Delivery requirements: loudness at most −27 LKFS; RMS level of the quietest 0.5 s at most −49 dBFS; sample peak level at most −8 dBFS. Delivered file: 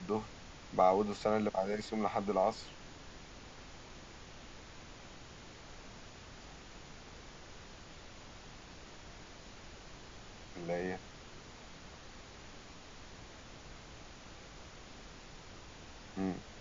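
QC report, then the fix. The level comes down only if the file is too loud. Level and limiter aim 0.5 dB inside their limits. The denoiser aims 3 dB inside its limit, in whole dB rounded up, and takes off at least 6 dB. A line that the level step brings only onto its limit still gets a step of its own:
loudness −35.5 LKFS: in spec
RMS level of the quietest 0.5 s −52 dBFS: in spec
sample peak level −16.0 dBFS: in spec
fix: no processing needed

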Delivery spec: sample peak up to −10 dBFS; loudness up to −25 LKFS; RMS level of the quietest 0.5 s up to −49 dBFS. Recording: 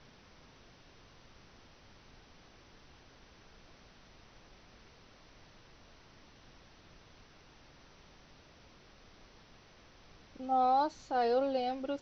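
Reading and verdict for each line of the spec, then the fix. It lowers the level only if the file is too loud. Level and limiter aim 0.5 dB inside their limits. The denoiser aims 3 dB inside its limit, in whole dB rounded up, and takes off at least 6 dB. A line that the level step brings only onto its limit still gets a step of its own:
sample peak −20.0 dBFS: in spec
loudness −31.5 LKFS: in spec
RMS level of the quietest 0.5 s −59 dBFS: in spec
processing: no processing needed

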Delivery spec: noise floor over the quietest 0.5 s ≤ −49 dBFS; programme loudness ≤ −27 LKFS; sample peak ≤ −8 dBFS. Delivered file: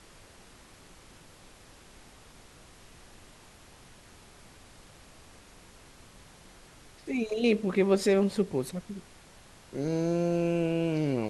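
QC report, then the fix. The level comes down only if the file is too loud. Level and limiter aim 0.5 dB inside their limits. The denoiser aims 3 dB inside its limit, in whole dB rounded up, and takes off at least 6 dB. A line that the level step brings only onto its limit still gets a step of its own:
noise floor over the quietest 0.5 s −54 dBFS: in spec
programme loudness −28.5 LKFS: in spec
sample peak −12.5 dBFS: in spec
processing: no processing needed

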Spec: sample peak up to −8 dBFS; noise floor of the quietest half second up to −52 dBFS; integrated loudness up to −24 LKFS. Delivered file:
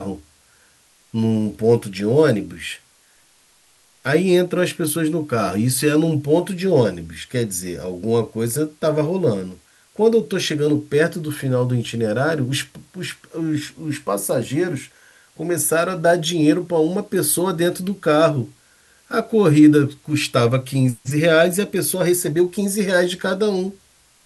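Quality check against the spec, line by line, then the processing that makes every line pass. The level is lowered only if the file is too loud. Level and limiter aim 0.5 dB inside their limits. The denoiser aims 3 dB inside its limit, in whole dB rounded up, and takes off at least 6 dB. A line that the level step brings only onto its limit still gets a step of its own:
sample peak −3.0 dBFS: out of spec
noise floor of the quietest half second −56 dBFS: in spec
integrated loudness −19.5 LKFS: out of spec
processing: level −5 dB
brickwall limiter −8.5 dBFS

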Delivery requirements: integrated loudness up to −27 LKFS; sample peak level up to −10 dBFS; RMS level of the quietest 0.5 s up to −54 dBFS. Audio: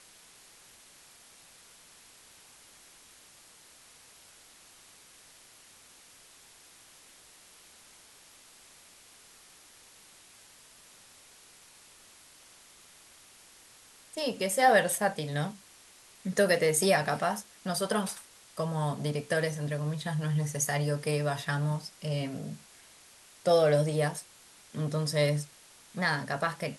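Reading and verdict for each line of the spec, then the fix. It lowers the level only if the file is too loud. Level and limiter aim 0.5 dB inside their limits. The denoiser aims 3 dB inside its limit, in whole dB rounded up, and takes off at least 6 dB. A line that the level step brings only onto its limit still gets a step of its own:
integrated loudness −29.5 LKFS: in spec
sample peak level −12.0 dBFS: in spec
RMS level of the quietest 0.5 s −56 dBFS: in spec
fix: no processing needed

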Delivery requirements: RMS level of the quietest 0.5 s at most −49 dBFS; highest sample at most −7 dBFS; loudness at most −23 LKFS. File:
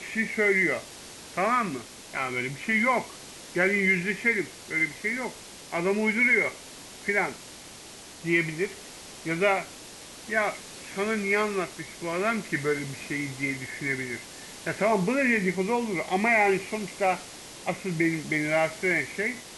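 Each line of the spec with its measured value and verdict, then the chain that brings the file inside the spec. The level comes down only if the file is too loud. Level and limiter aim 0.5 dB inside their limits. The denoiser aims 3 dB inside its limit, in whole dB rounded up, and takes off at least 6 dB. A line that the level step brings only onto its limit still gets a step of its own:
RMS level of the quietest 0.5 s −45 dBFS: out of spec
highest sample −10.0 dBFS: in spec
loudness −26.5 LKFS: in spec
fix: broadband denoise 7 dB, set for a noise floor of −45 dBFS

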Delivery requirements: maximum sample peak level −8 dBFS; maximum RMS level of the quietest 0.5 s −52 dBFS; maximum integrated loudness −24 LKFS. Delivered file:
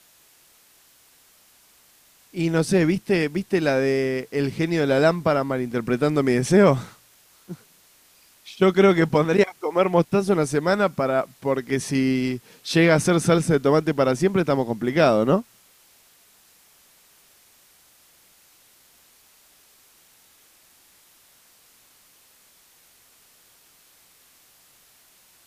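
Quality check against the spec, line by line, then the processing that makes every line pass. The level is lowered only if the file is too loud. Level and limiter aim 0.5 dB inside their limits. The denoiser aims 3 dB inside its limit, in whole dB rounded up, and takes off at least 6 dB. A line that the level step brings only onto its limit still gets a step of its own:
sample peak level −5.0 dBFS: out of spec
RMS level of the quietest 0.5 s −56 dBFS: in spec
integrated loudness −21.0 LKFS: out of spec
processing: level −3.5 dB

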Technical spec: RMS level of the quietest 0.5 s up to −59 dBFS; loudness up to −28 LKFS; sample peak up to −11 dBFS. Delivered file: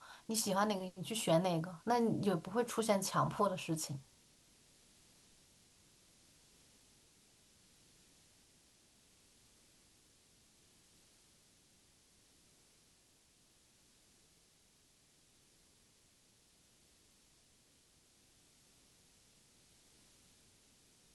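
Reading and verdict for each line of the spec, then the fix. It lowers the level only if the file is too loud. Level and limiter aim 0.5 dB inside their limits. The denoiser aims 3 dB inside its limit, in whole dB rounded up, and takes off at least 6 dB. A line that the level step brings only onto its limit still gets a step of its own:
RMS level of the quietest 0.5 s −70 dBFS: in spec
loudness −36.0 LKFS: in spec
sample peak −20.0 dBFS: in spec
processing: no processing needed

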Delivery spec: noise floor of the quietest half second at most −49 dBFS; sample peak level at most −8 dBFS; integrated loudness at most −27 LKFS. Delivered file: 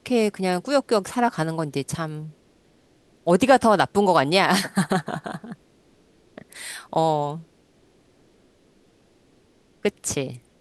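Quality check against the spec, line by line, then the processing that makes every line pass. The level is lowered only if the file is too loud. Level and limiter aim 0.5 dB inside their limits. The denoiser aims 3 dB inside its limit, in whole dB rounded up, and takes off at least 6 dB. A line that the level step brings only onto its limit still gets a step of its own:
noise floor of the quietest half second −59 dBFS: in spec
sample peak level −4.0 dBFS: out of spec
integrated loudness −22.5 LKFS: out of spec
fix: level −5 dB

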